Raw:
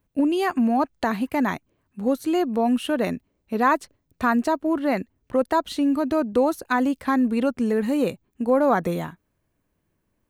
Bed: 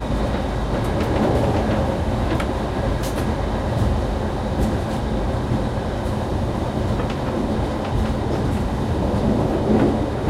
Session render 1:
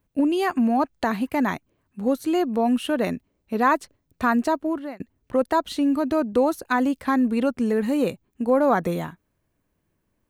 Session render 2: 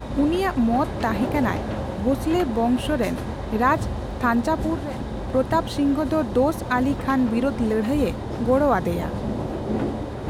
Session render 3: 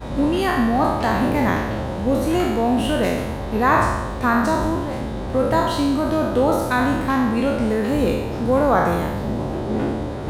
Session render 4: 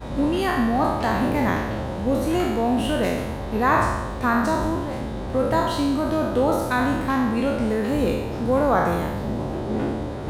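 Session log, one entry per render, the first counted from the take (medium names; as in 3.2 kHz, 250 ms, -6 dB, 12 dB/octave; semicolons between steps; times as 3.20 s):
4.60–5.00 s: fade out
add bed -8 dB
spectral sustain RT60 1.10 s
trim -2.5 dB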